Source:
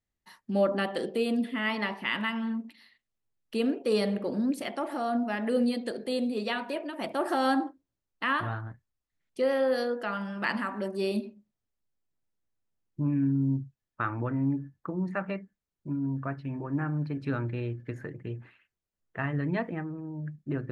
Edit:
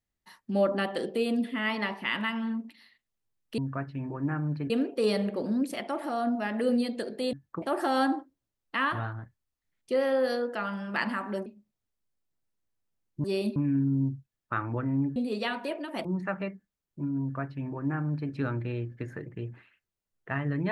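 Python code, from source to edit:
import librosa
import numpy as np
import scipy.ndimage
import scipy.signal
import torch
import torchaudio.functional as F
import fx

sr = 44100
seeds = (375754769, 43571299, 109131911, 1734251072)

y = fx.edit(x, sr, fx.swap(start_s=6.21, length_s=0.89, other_s=14.64, other_length_s=0.29),
    fx.move(start_s=10.94, length_s=0.32, to_s=13.04),
    fx.duplicate(start_s=16.08, length_s=1.12, to_s=3.58), tone=tone)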